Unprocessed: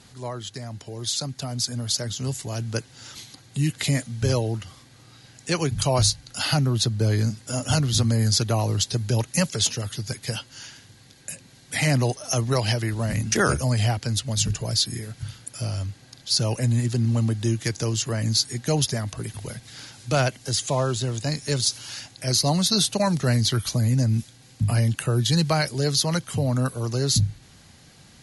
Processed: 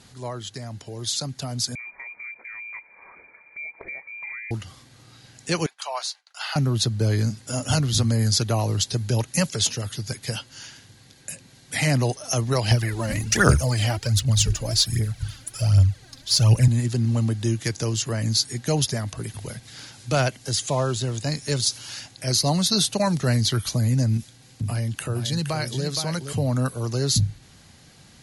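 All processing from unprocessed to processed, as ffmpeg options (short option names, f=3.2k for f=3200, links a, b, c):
-filter_complex "[0:a]asettb=1/sr,asplit=3[a][b][c];[a]atrim=end=1.754[d];[b]atrim=start=1.75:end=4.51,asetpts=PTS-STARTPTS,afade=t=in:d=0.004:c=qsin,afade=t=out:st=2.756:d=0.004:c=qsin,highpass=41,lowpass=f=2.1k:t=q:w=0.5098,lowpass=f=2.1k:t=q:w=0.6013,lowpass=f=2.1k:t=q:w=0.9,lowpass=f=2.1k:t=q:w=2.563,afreqshift=-2500,acompressor=threshold=-37dB:ratio=3:attack=3.2:release=140:knee=1:detection=peak[e];[c]atrim=start=4.506[f];[d][e]acrossfade=d=0.004:c1=hsin:c2=qsin[g];[g][f]acrossfade=d=0.004:c1=qsin:c2=hsin,asettb=1/sr,asplit=3[h][i][j];[h]atrim=end=5.664[k];[i]atrim=start=5.66:end=6.56,asetpts=PTS-STARTPTS,afade=t=in:d=0.004:c=qsin,afade=t=out:st=0.896:d=0.004:c=qsin,highpass=f=800:w=0.5412,highpass=f=800:w=1.3066,aemphasis=mode=reproduction:type=75kf,agate=range=-33dB:threshold=-51dB:ratio=3:release=100:detection=peak[l];[j]atrim=start=6.556[m];[k][l]acrossfade=d=0.004:c1=hsin:c2=qsin[n];[n][m]acrossfade=d=0.004:c1=qsin:c2=hsin,asettb=1/sr,asplit=3[o][p][q];[o]atrim=end=12.714[r];[p]atrim=start=12.71:end=16.68,asetpts=PTS-STARTPTS,afade=t=in:d=0.004:c=qsin,afade=t=out:st=3.966:d=0.004:c=qsin,aphaser=in_gain=1:out_gain=1:delay=3.9:decay=0.64:speed=1.3:type=triangular,asubboost=boost=3:cutoff=140[s];[q]atrim=start=16.676[t];[r][s]acrossfade=d=0.004:c1=hsin:c2=qsin[u];[u][t]acrossfade=d=0.004:c1=qsin:c2=hsin,asettb=1/sr,asplit=3[v][w][x];[v]atrim=end=24.174[y];[w]atrim=start=24.17:end=26.33,asetpts=PTS-STARTPTS,afade=t=in:d=0.004:c=qsin,afade=t=out:st=2.156:d=0.004:c=qsin,acompressor=threshold=-26dB:ratio=2:attack=3.2:release=140:knee=1:detection=peak,aecho=1:1:468:0.422,atrim=end_sample=95256[z];[x]atrim=start=26.326[aa];[y][z]acrossfade=d=0.004:c1=hsin:c2=qsin[ab];[ab][aa]acrossfade=d=0.004:c1=qsin:c2=hsin"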